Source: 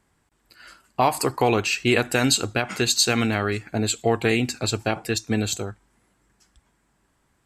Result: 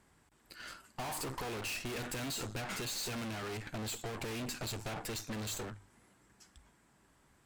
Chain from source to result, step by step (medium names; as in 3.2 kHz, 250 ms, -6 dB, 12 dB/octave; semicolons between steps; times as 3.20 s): valve stage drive 36 dB, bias 0.55; one-sided clip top -52.5 dBFS; hum notches 50/100 Hz; trim +2.5 dB